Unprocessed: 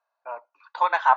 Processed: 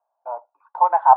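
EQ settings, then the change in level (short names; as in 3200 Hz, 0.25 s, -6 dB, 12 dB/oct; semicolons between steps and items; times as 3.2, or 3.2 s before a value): synth low-pass 800 Hz, resonance Q 4.1; -2.0 dB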